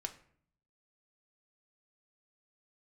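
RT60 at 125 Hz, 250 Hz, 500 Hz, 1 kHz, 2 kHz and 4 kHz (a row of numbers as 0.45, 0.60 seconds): 0.95, 0.80, 0.60, 0.55, 0.55, 0.35 seconds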